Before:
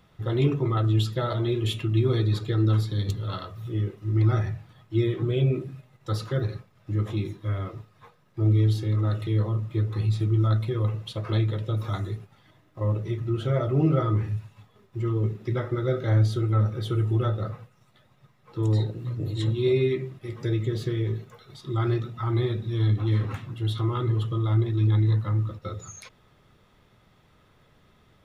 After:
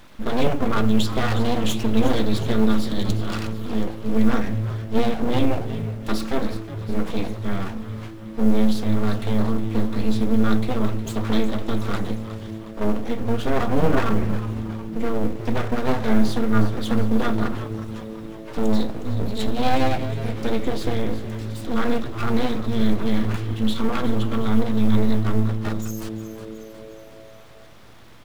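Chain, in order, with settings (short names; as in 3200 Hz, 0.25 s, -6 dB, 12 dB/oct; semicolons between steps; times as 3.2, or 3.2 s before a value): G.711 law mismatch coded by mu; 17.4–18.59 comb 6.8 ms, depth 81%; full-wave rectifier; frequency-shifting echo 0.363 s, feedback 58%, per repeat -110 Hz, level -12.5 dB; gain +6 dB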